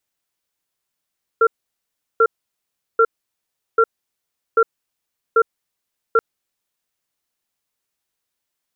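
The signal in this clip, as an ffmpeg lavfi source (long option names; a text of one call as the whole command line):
ffmpeg -f lavfi -i "aevalsrc='0.237*(sin(2*PI*453*t)+sin(2*PI*1370*t))*clip(min(mod(t,0.79),0.06-mod(t,0.79))/0.005,0,1)':duration=4.78:sample_rate=44100" out.wav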